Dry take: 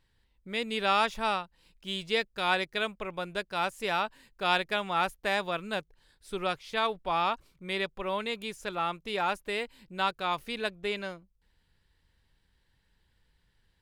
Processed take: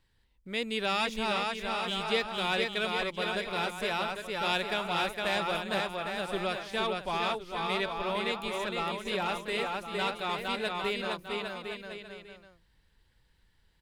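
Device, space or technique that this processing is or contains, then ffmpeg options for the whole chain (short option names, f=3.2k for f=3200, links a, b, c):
one-band saturation: -filter_complex "[0:a]aecho=1:1:460|805|1064|1258|1403:0.631|0.398|0.251|0.158|0.1,acrossover=split=570|2100[a][b][c];[b]asoftclip=type=tanh:threshold=-32.5dB[d];[a][d][c]amix=inputs=3:normalize=0"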